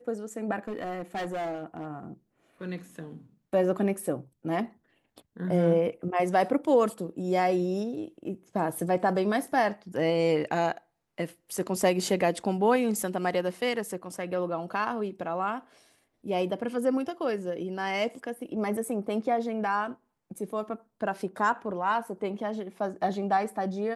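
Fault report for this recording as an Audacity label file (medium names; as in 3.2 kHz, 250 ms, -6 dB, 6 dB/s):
0.680000	1.860000	clipped -29 dBFS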